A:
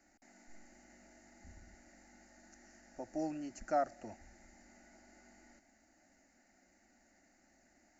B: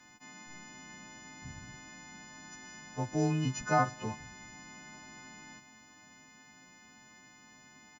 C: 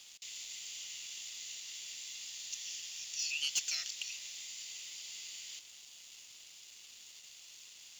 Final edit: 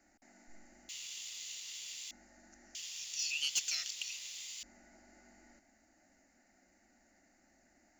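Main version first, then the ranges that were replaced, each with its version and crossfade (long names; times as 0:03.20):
A
0:00.89–0:02.11: punch in from C
0:02.75–0:04.63: punch in from C
not used: B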